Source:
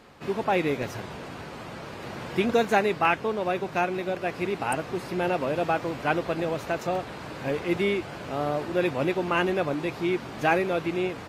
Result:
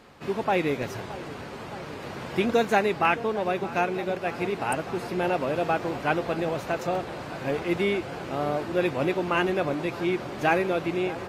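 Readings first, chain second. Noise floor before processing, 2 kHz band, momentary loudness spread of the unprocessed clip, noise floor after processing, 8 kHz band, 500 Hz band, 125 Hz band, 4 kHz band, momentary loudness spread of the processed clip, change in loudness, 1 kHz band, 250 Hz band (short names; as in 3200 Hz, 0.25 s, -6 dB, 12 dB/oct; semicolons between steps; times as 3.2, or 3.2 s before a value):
-40 dBFS, 0.0 dB, 13 LU, -39 dBFS, 0.0 dB, +0.5 dB, 0.0 dB, 0.0 dB, 12 LU, 0.0 dB, +0.5 dB, 0.0 dB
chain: dark delay 0.619 s, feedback 80%, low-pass 1700 Hz, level -15.5 dB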